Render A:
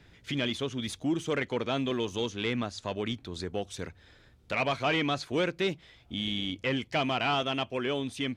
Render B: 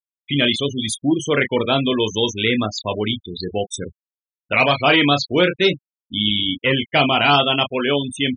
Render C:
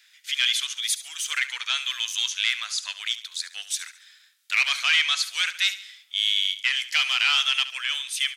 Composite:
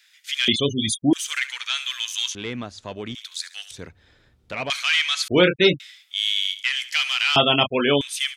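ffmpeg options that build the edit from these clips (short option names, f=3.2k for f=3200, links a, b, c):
-filter_complex "[1:a]asplit=3[a][b][c];[0:a]asplit=2[d][e];[2:a]asplit=6[f][g][h][i][j][k];[f]atrim=end=0.482[l];[a]atrim=start=0.478:end=1.132[m];[g]atrim=start=1.128:end=2.352[n];[d]atrim=start=2.348:end=3.152[o];[h]atrim=start=3.148:end=3.712[p];[e]atrim=start=3.708:end=4.702[q];[i]atrim=start=4.698:end=5.282[r];[b]atrim=start=5.278:end=5.802[s];[j]atrim=start=5.798:end=7.362[t];[c]atrim=start=7.358:end=8.012[u];[k]atrim=start=8.008[v];[l][m]acrossfade=d=0.004:c1=hsin:c2=hsin[w];[w][n]acrossfade=d=0.004:c1=hsin:c2=hsin[x];[x][o]acrossfade=d=0.004:c1=hsin:c2=hsin[y];[y][p]acrossfade=d=0.004:c1=hsin:c2=hsin[z];[z][q]acrossfade=d=0.004:c1=hsin:c2=hsin[aa];[aa][r]acrossfade=d=0.004:c1=hsin:c2=hsin[ab];[ab][s]acrossfade=d=0.004:c1=hsin:c2=hsin[ac];[ac][t]acrossfade=d=0.004:c1=hsin:c2=hsin[ad];[ad][u]acrossfade=d=0.004:c1=hsin:c2=hsin[ae];[ae][v]acrossfade=d=0.004:c1=hsin:c2=hsin"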